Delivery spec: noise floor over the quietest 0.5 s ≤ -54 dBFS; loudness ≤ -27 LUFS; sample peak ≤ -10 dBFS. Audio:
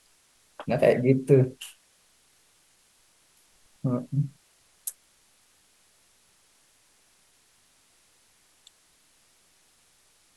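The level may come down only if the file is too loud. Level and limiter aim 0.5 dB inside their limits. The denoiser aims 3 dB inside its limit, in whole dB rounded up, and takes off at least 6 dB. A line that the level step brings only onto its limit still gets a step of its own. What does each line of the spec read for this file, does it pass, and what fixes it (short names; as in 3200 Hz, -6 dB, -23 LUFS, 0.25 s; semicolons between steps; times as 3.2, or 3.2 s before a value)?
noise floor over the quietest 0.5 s -63 dBFS: OK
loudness -25.5 LUFS: fail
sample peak -6.0 dBFS: fail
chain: gain -2 dB; limiter -10.5 dBFS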